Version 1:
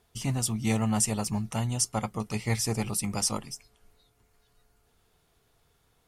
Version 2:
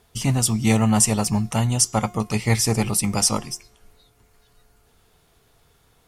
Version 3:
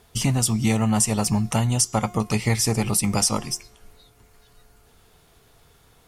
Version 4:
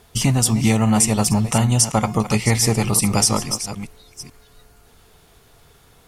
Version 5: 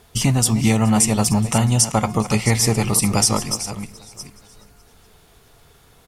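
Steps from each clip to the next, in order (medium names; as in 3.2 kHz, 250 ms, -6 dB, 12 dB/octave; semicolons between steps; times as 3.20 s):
de-hum 355.8 Hz, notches 23; trim +8.5 dB
compression 3:1, threshold -22 dBFS, peak gain reduction 8 dB; trim +3.5 dB
chunks repeated in reverse 430 ms, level -11.5 dB; trim +4 dB
feedback delay 423 ms, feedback 47%, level -22 dB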